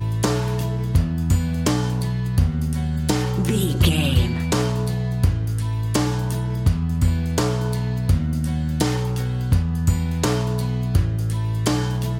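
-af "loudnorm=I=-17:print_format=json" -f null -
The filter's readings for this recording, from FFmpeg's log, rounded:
"input_i" : "-21.9",
"input_tp" : "-4.9",
"input_lra" : "1.0",
"input_thresh" : "-31.9",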